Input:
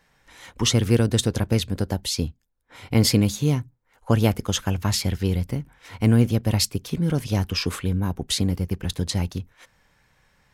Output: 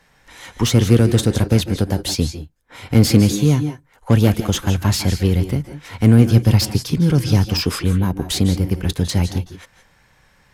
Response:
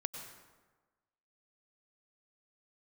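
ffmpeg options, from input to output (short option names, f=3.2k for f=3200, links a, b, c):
-filter_complex "[0:a]asettb=1/sr,asplit=3[a][b][c];[a]atrim=end=6.274[d];[b]atrim=start=6.27:end=7.62,asetpts=PTS-STARTPTS,afade=t=in:d=0.004:c=qsin,afade=t=out:st=1.346:d=0.004:c=qsin,equalizer=f=125:t=o:w=0.33:g=7,equalizer=f=630:t=o:w=0.33:g=-5,equalizer=f=5k:t=o:w=0.33:g=7[e];[c]atrim=start=7.616[f];[d][e]acrossfade=d=0.004:c1=hsin:c2=qsin[g];[g][f]acrossfade=d=0.004:c1=qsin:c2=hsin,acrossover=split=370[h][i];[i]asoftclip=type=tanh:threshold=-24.5dB[j];[h][j]amix=inputs=2:normalize=0[k];[1:a]atrim=start_sample=2205,afade=t=out:st=0.16:d=0.01,atrim=end_sample=7497,asetrate=27342,aresample=44100[l];[k][l]afir=irnorm=-1:irlink=0,volume=5.5dB"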